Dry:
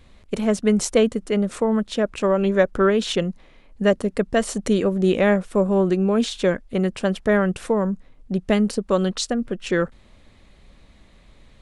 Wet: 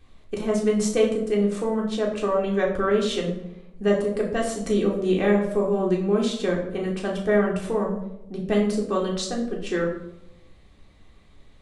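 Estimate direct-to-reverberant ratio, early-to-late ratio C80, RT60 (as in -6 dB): -2.5 dB, 9.5 dB, 0.85 s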